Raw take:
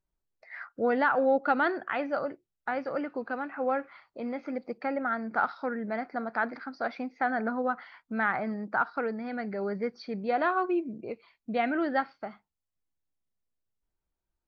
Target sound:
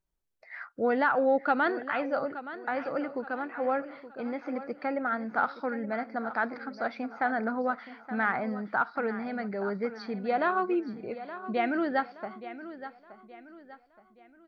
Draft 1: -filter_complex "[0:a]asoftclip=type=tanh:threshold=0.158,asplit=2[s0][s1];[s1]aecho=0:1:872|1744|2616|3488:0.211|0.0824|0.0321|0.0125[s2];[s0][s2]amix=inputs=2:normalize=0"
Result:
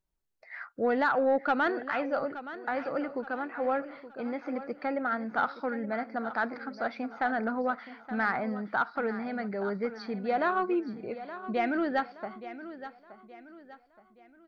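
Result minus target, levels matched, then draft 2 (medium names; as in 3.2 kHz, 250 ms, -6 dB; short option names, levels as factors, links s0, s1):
saturation: distortion +16 dB
-filter_complex "[0:a]asoftclip=type=tanh:threshold=0.447,asplit=2[s0][s1];[s1]aecho=0:1:872|1744|2616|3488:0.211|0.0824|0.0321|0.0125[s2];[s0][s2]amix=inputs=2:normalize=0"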